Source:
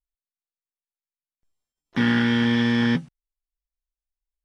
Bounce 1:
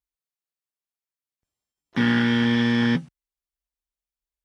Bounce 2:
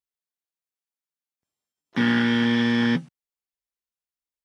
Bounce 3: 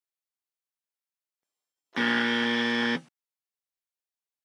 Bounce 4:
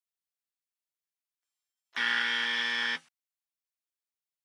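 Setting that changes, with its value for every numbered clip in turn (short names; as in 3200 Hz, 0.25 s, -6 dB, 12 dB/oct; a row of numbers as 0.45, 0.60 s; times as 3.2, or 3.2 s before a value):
HPF, cutoff: 47, 130, 380, 1300 Hz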